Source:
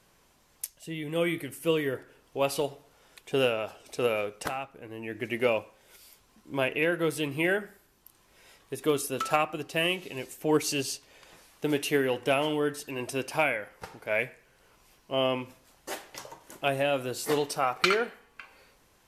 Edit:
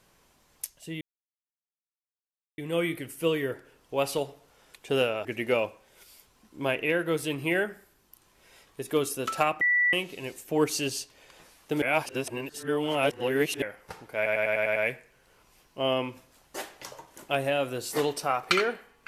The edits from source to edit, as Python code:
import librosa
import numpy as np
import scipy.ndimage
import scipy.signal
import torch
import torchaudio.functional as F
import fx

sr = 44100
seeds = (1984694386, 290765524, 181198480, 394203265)

y = fx.edit(x, sr, fx.insert_silence(at_s=1.01, length_s=1.57),
    fx.cut(start_s=3.68, length_s=1.5),
    fx.bleep(start_s=9.54, length_s=0.32, hz=1960.0, db=-20.0),
    fx.reverse_span(start_s=11.75, length_s=1.8),
    fx.stutter(start_s=14.09, slice_s=0.1, count=7), tone=tone)